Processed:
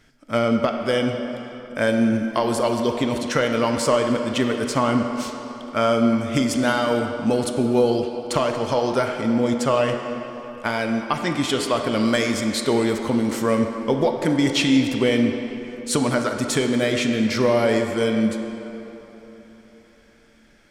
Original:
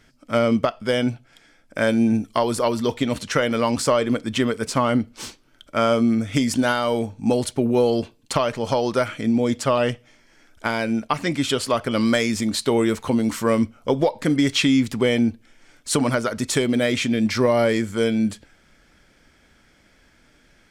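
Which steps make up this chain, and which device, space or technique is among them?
filtered reverb send (on a send: high-pass 210 Hz 12 dB/octave + low-pass 8.1 kHz 12 dB/octave + reverberation RT60 3.6 s, pre-delay 20 ms, DRR 4 dB); on the sum: trim -1 dB

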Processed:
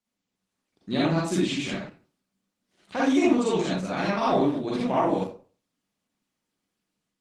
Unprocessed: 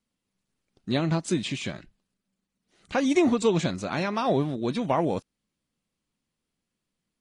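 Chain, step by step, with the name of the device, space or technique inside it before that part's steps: far-field microphone of a smart speaker (reverberation RT60 0.40 s, pre-delay 39 ms, DRR -6.5 dB; high-pass 140 Hz 12 dB/octave; level rider gain up to 4 dB; trim -7 dB; Opus 16 kbps 48 kHz)

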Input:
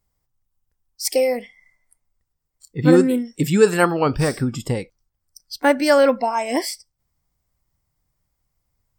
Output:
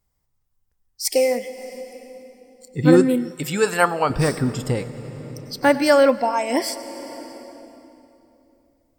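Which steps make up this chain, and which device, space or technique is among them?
compressed reverb return (on a send at -5.5 dB: reverberation RT60 2.9 s, pre-delay 90 ms + compression 10:1, threshold -24 dBFS, peak gain reduction 14.5 dB); 3.31–4.10 s: on the sum: resonant low shelf 480 Hz -7.5 dB, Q 1.5

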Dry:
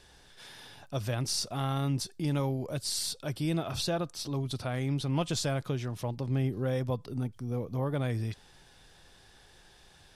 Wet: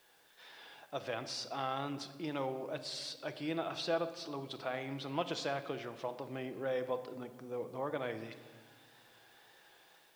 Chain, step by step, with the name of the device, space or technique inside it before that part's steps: dictaphone (band-pass 400–3400 Hz; level rider gain up to 5 dB; wow and flutter; white noise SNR 30 dB); simulated room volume 1500 m³, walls mixed, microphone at 0.66 m; trim -6.5 dB

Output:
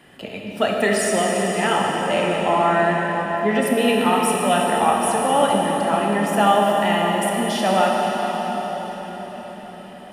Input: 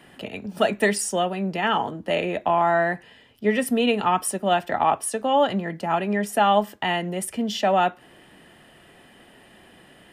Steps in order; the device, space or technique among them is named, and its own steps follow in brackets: cathedral (reverberation RT60 5.7 s, pre-delay 17 ms, DRR -2 dB)

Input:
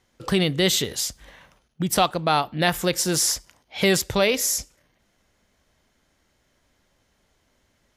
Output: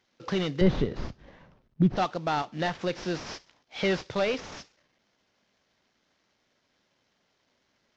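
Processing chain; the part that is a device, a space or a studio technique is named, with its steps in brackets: early wireless headset (high-pass 150 Hz 12 dB/octave; CVSD coder 32 kbps); 0.61–1.97 s: tilt EQ -4.5 dB/octave; trim -5 dB

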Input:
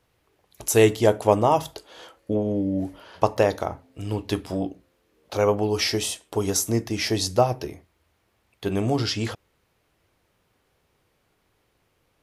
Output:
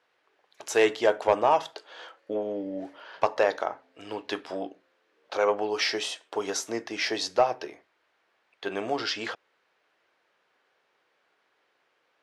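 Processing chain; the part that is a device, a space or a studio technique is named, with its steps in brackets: intercom (band-pass 490–4500 Hz; peaking EQ 1.6 kHz +5 dB 0.46 oct; saturation -9.5 dBFS, distortion -18 dB)

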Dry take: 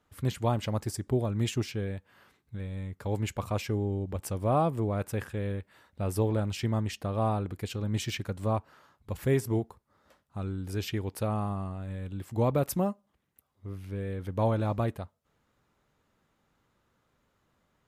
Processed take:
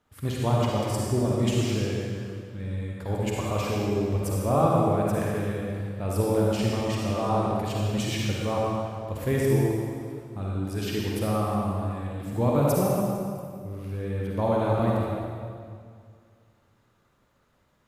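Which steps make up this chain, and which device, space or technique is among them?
stairwell (reverberation RT60 2.1 s, pre-delay 43 ms, DRR -4 dB)

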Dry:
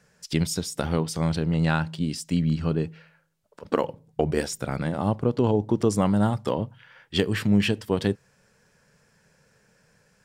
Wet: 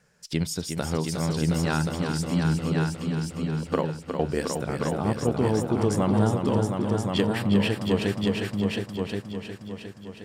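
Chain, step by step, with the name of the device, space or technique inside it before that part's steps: multi-head tape echo (multi-head delay 359 ms, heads all three, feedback 43%, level -7 dB; wow and flutter 24 cents); 7.28–7.82 s: peaking EQ 6.4 kHz -8.5 dB 0.28 oct; trim -2.5 dB

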